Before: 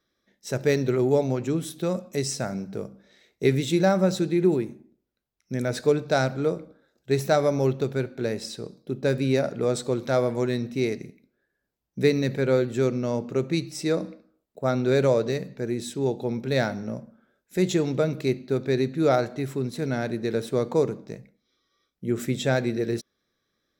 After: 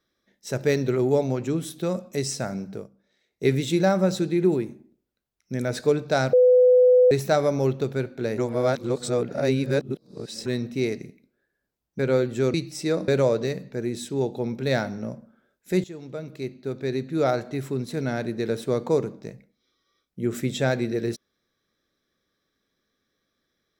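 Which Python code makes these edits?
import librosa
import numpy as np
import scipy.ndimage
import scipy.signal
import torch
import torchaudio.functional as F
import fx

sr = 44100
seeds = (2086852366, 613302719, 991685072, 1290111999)

y = fx.edit(x, sr, fx.fade_down_up(start_s=2.71, length_s=0.77, db=-12.0, fade_s=0.18),
    fx.bleep(start_s=6.33, length_s=0.78, hz=501.0, db=-12.0),
    fx.reverse_span(start_s=8.38, length_s=2.08),
    fx.cut(start_s=11.99, length_s=0.39),
    fx.cut(start_s=12.93, length_s=0.61),
    fx.cut(start_s=14.08, length_s=0.85),
    fx.fade_in_from(start_s=17.69, length_s=1.77, floor_db=-18.5), tone=tone)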